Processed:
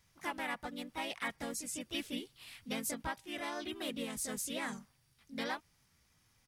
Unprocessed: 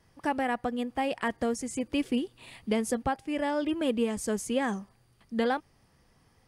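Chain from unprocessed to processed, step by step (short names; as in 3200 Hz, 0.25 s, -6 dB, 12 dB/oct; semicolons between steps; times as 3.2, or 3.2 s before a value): passive tone stack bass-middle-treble 5-5-5; harmoniser -5 st -10 dB, +3 st -1 dB; gain +3 dB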